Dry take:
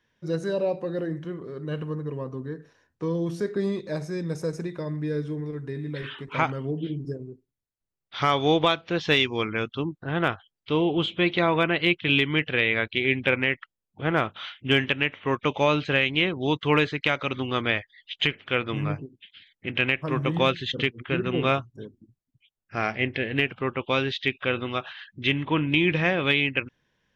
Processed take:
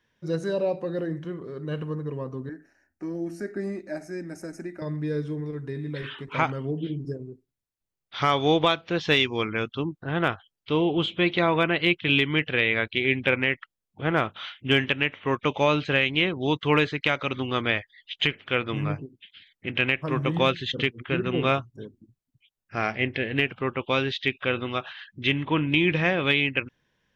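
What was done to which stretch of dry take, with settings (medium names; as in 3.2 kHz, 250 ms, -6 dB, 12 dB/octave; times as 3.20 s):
2.49–4.82 s: static phaser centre 700 Hz, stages 8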